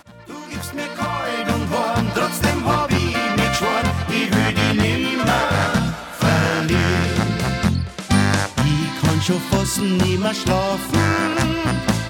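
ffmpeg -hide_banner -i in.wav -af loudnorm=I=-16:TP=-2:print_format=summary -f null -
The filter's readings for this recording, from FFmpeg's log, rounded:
Input Integrated:    -19.2 LUFS
Input True Peak:      -3.5 dBTP
Input LRA:             1.1 LU
Input Threshold:     -29.3 LUFS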